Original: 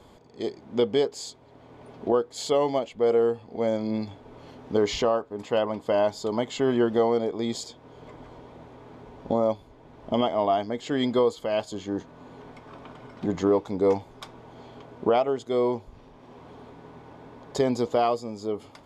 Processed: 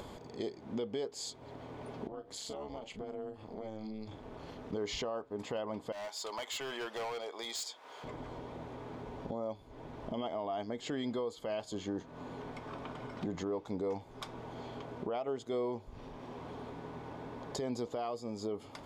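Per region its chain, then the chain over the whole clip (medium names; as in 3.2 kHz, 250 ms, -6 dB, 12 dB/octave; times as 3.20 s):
2.07–4.73 s: AM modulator 220 Hz, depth 80% + compression 4:1, threshold -41 dBFS + doubling 37 ms -11.5 dB
5.92–8.04 s: high-pass 950 Hz + treble shelf 8.5 kHz +4 dB + overload inside the chain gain 33.5 dB
whole clip: compression 2:1, threshold -40 dBFS; peak limiter -29 dBFS; upward compressor, threshold -43 dBFS; trim +1 dB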